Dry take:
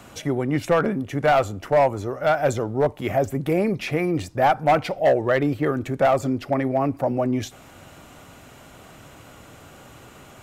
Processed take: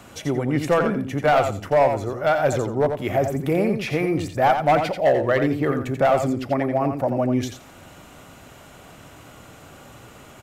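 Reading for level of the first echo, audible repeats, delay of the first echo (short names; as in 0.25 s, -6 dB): -7.0 dB, 2, 87 ms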